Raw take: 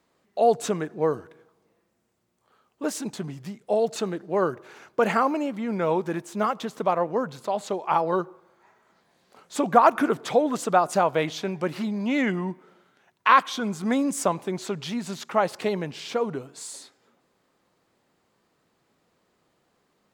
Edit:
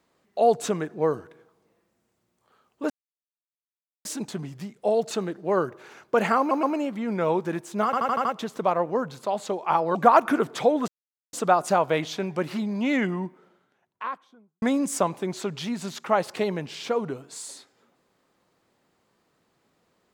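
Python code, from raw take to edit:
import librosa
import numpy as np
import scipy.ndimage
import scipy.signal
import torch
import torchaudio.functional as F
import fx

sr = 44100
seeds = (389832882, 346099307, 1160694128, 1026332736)

y = fx.studio_fade_out(x, sr, start_s=12.17, length_s=1.7)
y = fx.edit(y, sr, fx.insert_silence(at_s=2.9, length_s=1.15),
    fx.stutter(start_s=5.24, slice_s=0.12, count=3),
    fx.stutter(start_s=6.46, slice_s=0.08, count=6),
    fx.cut(start_s=8.16, length_s=1.49),
    fx.insert_silence(at_s=10.58, length_s=0.45), tone=tone)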